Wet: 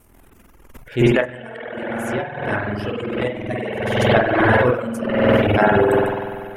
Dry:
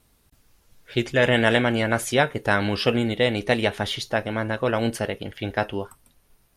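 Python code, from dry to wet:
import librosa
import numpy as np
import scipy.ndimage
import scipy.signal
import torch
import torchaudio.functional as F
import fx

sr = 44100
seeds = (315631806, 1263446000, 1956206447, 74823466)

y = fx.peak_eq(x, sr, hz=4100.0, db=-14.0, octaves=0.87)
y = fx.rev_spring(y, sr, rt60_s=2.9, pass_ms=(48,), chirp_ms=40, drr_db=-8.0)
y = fx.transient(y, sr, attack_db=-9, sustain_db=12)
y = fx.over_compress(y, sr, threshold_db=-19.0, ratio=-0.5)
y = fx.dereverb_blind(y, sr, rt60_s=1.6)
y = y * 10.0 ** (4.0 / 20.0)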